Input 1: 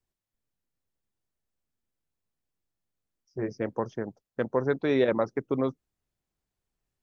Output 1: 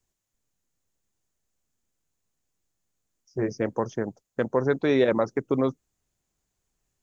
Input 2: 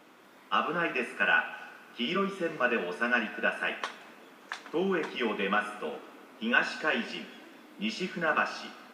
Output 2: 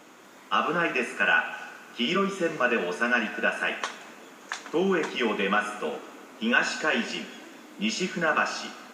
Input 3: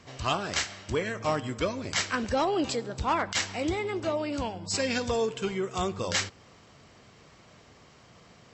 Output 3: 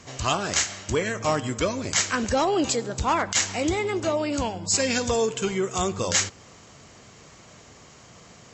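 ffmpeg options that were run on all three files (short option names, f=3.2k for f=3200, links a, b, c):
-filter_complex "[0:a]equalizer=f=6.8k:t=o:w=0.4:g=10.5,asplit=2[a][b];[b]alimiter=limit=-21.5dB:level=0:latency=1:release=95,volume=-2dB[c];[a][c]amix=inputs=2:normalize=0"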